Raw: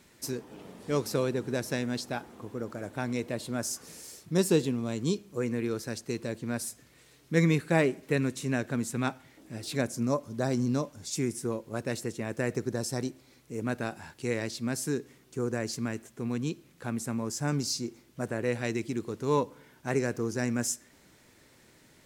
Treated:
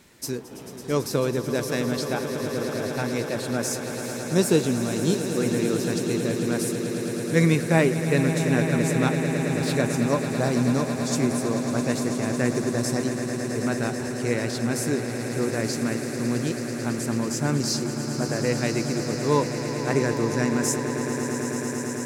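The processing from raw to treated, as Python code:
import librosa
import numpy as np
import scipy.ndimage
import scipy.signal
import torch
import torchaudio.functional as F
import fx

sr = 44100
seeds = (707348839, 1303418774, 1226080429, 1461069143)

y = fx.echo_swell(x, sr, ms=110, loudest=8, wet_db=-12.5)
y = y * 10.0 ** (4.5 / 20.0)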